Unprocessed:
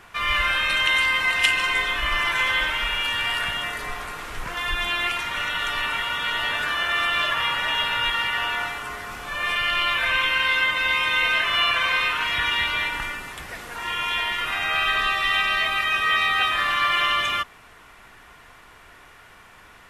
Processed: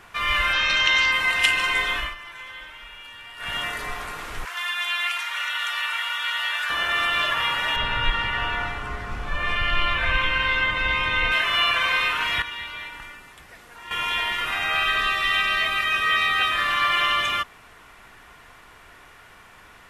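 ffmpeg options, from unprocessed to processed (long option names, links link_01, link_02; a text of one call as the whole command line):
ffmpeg -i in.wav -filter_complex "[0:a]asettb=1/sr,asplit=3[link_01][link_02][link_03];[link_01]atrim=end=0.534[link_04];[link_02]atrim=start=0.53:end=1.12,asetpts=PTS-STARTPTS,afade=type=in:duration=0.004:curve=qsin,afade=type=out:start_time=0.586:duration=0.004:curve=qsin,highshelf=frequency=7900:width_type=q:width=3:gain=-12.5[link_05];[link_03]atrim=start=1.116[link_06];[link_04][link_05]acrossfade=duration=0.004:curve1=hsin:curve2=qsin[link_07];[link_07][link_06]acrossfade=duration=0.004:curve1=qsin:curve2=hsin,asettb=1/sr,asplit=3[link_08][link_09][link_10];[link_08]atrim=end=4.454[link_11];[link_09]atrim=start=4.45:end=6.7,asetpts=PTS-STARTPTS,afade=type=in:duration=0.004:curve=qsin,afade=type=out:start_time=2.246:duration=0.004:curve=qsin,highpass=1100[link_12];[link_10]atrim=start=6.696[link_13];[link_11][link_12]acrossfade=duration=0.004:curve1=hsin:curve2=qsin[link_14];[link_14][link_13]acrossfade=duration=0.004:curve1=qsin:curve2=hsin,asettb=1/sr,asplit=3[link_15][link_16][link_17];[link_15]atrim=end=7.764[link_18];[link_16]atrim=start=7.76:end=11.32,asetpts=PTS-STARTPTS,afade=type=in:duration=0.004:curve=qsin,afade=type=out:start_time=3.556:duration=0.004:curve=qsin,aemphasis=mode=reproduction:type=bsi[link_19];[link_17]atrim=start=11.316[link_20];[link_18][link_19]acrossfade=duration=0.004:curve1=hsin:curve2=qsin[link_21];[link_21][link_20]acrossfade=duration=0.004:curve1=qsin:curve2=hsin,asettb=1/sr,asplit=3[link_22][link_23][link_24];[link_22]atrim=end=14.834[link_25];[link_23]atrim=start=14.83:end=16.71,asetpts=PTS-STARTPTS,afade=type=in:duration=0.004:curve=qsin,afade=type=out:start_time=1.876:duration=0.004:curve=qsin,equalizer=frequency=850:width_type=o:width=0.25:gain=-9.5[link_26];[link_24]atrim=start=16.706[link_27];[link_25][link_26]acrossfade=duration=0.004:curve1=hsin:curve2=qsin[link_28];[link_28][link_27]acrossfade=duration=0.004:curve1=qsin:curve2=hsin,asplit=5[link_29][link_30][link_31][link_32][link_33];[link_29]atrim=end=2.15,asetpts=PTS-STARTPTS,afade=type=out:start_time=1.96:duration=0.19:silence=0.141254[link_34];[link_30]atrim=start=2.15:end=3.37,asetpts=PTS-STARTPTS,volume=-17dB[link_35];[link_31]atrim=start=3.37:end=12.422,asetpts=PTS-STARTPTS,afade=type=in:duration=0.19:silence=0.141254[link_36];[link_32]atrim=start=12.418:end=13.912,asetpts=PTS-STARTPTS,volume=-10.5dB[link_37];[link_33]atrim=start=13.908[link_38];[link_34][link_35][link_36]concat=n=3:v=0:a=1[link_39];[link_39][link_37]acrossfade=duration=0.004:curve1=hsin:curve2=hsin[link_40];[link_40][link_38]acrossfade=duration=0.004:curve1=hsin:curve2=hsin" out.wav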